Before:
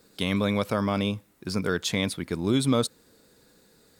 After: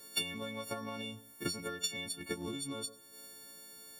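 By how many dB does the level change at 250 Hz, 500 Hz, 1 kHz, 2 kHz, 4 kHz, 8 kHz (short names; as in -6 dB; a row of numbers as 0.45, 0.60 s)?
-16.5, -15.0, -12.5, -10.0, -6.0, -4.0 dB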